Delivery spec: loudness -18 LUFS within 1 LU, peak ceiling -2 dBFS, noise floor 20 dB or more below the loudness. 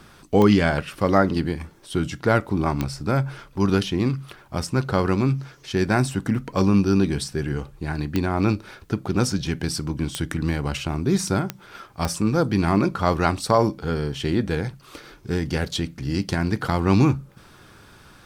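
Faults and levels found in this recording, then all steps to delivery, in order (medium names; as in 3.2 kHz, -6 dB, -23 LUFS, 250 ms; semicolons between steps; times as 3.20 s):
clicks found 6; loudness -23.5 LUFS; peak level -3.0 dBFS; loudness target -18.0 LUFS
-> de-click; trim +5.5 dB; peak limiter -2 dBFS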